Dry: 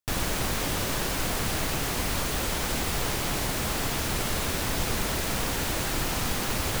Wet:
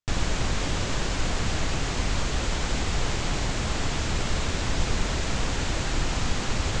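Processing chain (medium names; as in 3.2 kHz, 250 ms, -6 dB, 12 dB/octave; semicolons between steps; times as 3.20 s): elliptic low-pass 7.4 kHz, stop band 70 dB; bass shelf 110 Hz +8.5 dB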